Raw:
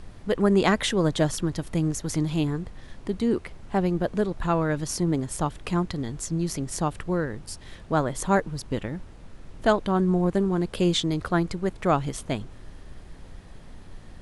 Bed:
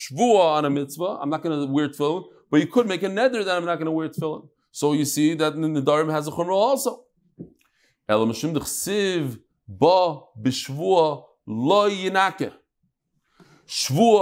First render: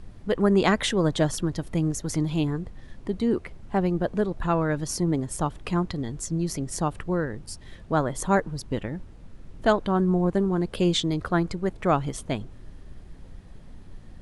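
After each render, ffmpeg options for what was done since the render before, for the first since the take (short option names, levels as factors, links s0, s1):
-af "afftdn=nr=6:nf=-46"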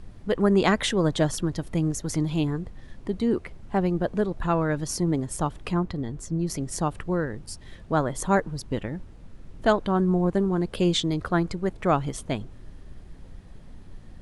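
-filter_complex "[0:a]asettb=1/sr,asplit=3[s0][s1][s2];[s0]atrim=end=5.724[s3];[s1]atrim=start=5.72:end=6.5,asetpts=PTS-STARTPTS,afade=t=in:d=0.004:c=qsin,afade=t=out:st=0.776:d=0.004:c=qsin,highshelf=f=2500:g=-8[s4];[s2]atrim=start=6.496[s5];[s3][s4]acrossfade=d=0.004:c1=hsin:c2=qsin[s6];[s6][s5]acrossfade=d=0.004:c1=qsin:c2=hsin"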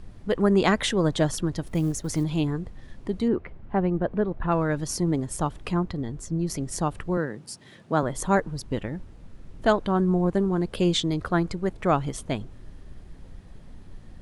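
-filter_complex "[0:a]asettb=1/sr,asplit=3[s0][s1][s2];[s0]atrim=end=1.664[s3];[s1]atrim=start=1.66:end=2.24,asetpts=PTS-STARTPTS,afade=t=in:d=0.004:c=qsin,afade=t=out:st=0.576:d=0.004:c=qsin,acrusher=bits=8:mode=log:mix=0:aa=0.000001[s4];[s2]atrim=start=2.236[s5];[s3][s4]acrossfade=d=0.004:c1=hsin:c2=qsin[s6];[s6][s5]acrossfade=d=0.004:c1=qsin:c2=hsin,asettb=1/sr,asplit=3[s7][s8][s9];[s7]atrim=end=3.284[s10];[s8]atrim=start=3.28:end=4.52,asetpts=PTS-STARTPTS,afade=t=in:d=0.004:c=qsin,afade=t=out:st=1.236:d=0.004:c=qsin,lowpass=2200[s11];[s9]atrim=start=4.516[s12];[s10][s11]acrossfade=d=0.004:c1=hsin:c2=qsin[s13];[s13][s12]acrossfade=d=0.004:c1=qsin:c2=hsin,asettb=1/sr,asplit=3[s14][s15][s16];[s14]atrim=end=7.174[s17];[s15]atrim=start=7.17:end=8.03,asetpts=PTS-STARTPTS,afade=t=in:d=0.004:c=qsin,afade=t=out:st=0.856:d=0.004:c=qsin,highpass=f=130:w=0.5412,highpass=f=130:w=1.3066[s18];[s16]atrim=start=8.026[s19];[s17][s18]acrossfade=d=0.004:c1=hsin:c2=qsin[s20];[s20][s19]acrossfade=d=0.004:c1=qsin:c2=hsin"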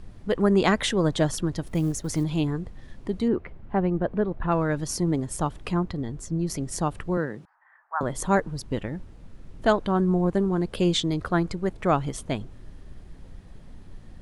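-filter_complex "[0:a]asettb=1/sr,asplit=3[s0][s1][s2];[s0]atrim=end=7.454[s3];[s1]atrim=start=7.45:end=8.01,asetpts=PTS-STARTPTS,afade=t=in:d=0.004:c=qsin,afade=t=out:st=0.556:d=0.004:c=qsin,asuperpass=centerf=1200:order=8:qfactor=1.2[s4];[s2]atrim=start=8.006[s5];[s3][s4]acrossfade=d=0.004:c1=hsin:c2=qsin[s6];[s6][s5]acrossfade=d=0.004:c1=qsin:c2=hsin"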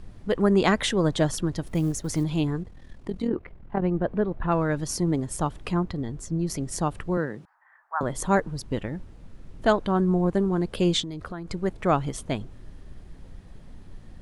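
-filter_complex "[0:a]asettb=1/sr,asplit=3[s0][s1][s2];[s0]atrim=end=2.634[s3];[s1]atrim=start=2.63:end=3.82,asetpts=PTS-STARTPTS,afade=t=in:d=0.004:c=qsin,afade=t=out:st=1.186:d=0.004:c=qsin,tremolo=f=41:d=0.71[s4];[s2]atrim=start=3.816[s5];[s3][s4]acrossfade=d=0.004:c1=hsin:c2=qsin[s6];[s6][s5]acrossfade=d=0.004:c1=qsin:c2=hsin,asettb=1/sr,asplit=3[s7][s8][s9];[s7]atrim=end=11.014[s10];[s8]atrim=start=11.01:end=11.5,asetpts=PTS-STARTPTS,afade=t=in:d=0.004:c=qsin,afade=t=out:st=0.486:d=0.004:c=qsin,acompressor=threshold=0.0282:ratio=6:attack=3.2:release=140:knee=1:detection=peak[s11];[s9]atrim=start=11.496[s12];[s10][s11]acrossfade=d=0.004:c1=hsin:c2=qsin[s13];[s13][s12]acrossfade=d=0.004:c1=qsin:c2=hsin"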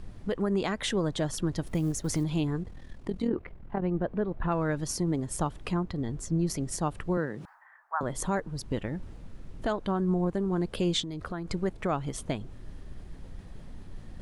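-af "alimiter=limit=0.119:level=0:latency=1:release=346,areverse,acompressor=mode=upward:threshold=0.0141:ratio=2.5,areverse"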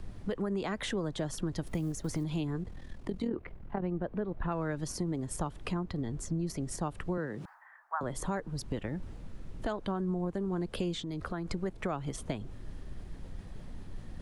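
-filter_complex "[0:a]acrossover=split=330|400|2000[s0][s1][s2][s3];[s3]alimiter=level_in=1.78:limit=0.0631:level=0:latency=1:release=102,volume=0.562[s4];[s0][s1][s2][s4]amix=inputs=4:normalize=0,acompressor=threshold=0.0282:ratio=3"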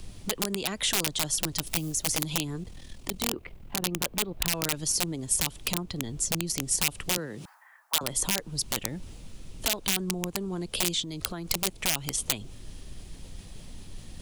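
-af "aeval=exprs='(mod(17.8*val(0)+1,2)-1)/17.8':c=same,aexciter=amount=3.5:drive=6.3:freq=2400"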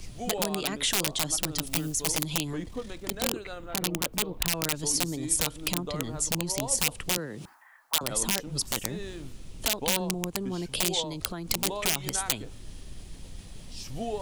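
-filter_complex "[1:a]volume=0.126[s0];[0:a][s0]amix=inputs=2:normalize=0"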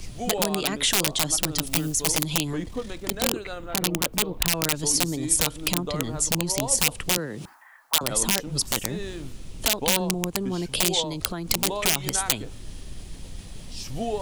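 -af "volume=1.68,alimiter=limit=0.891:level=0:latency=1"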